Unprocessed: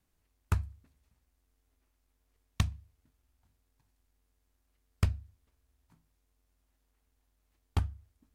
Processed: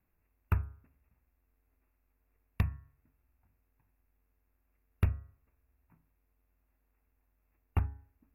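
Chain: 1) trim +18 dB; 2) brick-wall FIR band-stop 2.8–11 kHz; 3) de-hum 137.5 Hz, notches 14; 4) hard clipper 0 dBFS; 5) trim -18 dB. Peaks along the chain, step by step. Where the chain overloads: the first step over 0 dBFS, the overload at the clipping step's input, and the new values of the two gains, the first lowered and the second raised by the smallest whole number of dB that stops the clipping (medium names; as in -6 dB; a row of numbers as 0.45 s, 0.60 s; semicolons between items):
+6.0 dBFS, +3.5 dBFS, +3.5 dBFS, 0.0 dBFS, -18.0 dBFS; step 1, 3.5 dB; step 1 +14 dB, step 5 -14 dB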